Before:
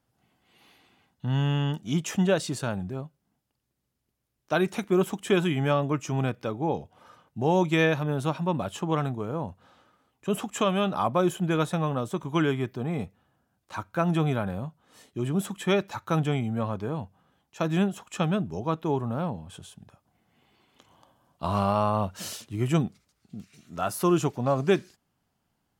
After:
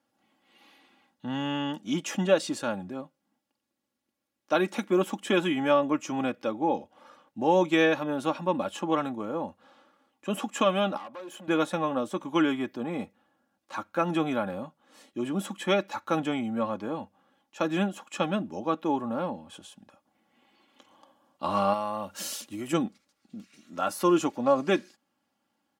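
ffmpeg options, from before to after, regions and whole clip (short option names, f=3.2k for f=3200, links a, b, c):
-filter_complex "[0:a]asettb=1/sr,asplit=3[a][b][c];[a]atrim=end=10.974[d];[b]atrim=start=10.97:end=11.48,asetpts=PTS-STARTPTS,afade=t=in:d=0.004:c=qsin,afade=t=out:st=0.506:d=0.004:c=qsin,highpass=f=400:p=1,acompressor=threshold=-35dB:ratio=3:attack=3.2:release=140:knee=1:detection=peak,aeval=exprs='(tanh(70.8*val(0)+0.5)-tanh(0.5))/70.8':c=same[e];[c]atrim=start=11.476[f];[d][e]acrossfade=d=0.004:c1=hsin:c2=qsin[g];[g][f]acrossfade=d=0.004:c1=qsin:c2=hsin,asettb=1/sr,asplit=3[h][i][j];[h]atrim=end=21.734[k];[i]atrim=start=21.73:end=22.73,asetpts=PTS-STARTPTS,afade=t=in:d=0.004:c=qsin,afade=t=out:st=0.996:d=0.004:c=qsin,highshelf=f=6.5k:g=12,acompressor=threshold=-30dB:ratio=2.5:attack=3.2:release=140:knee=1:detection=peak[l];[j]atrim=start=22.726[m];[k][l]acrossfade=d=0.004:c1=hsin:c2=qsin[n];[n][m]acrossfade=d=0.004:c1=qsin:c2=hsin,highpass=210,highshelf=f=8.7k:g=-8,aecho=1:1:3.6:0.61"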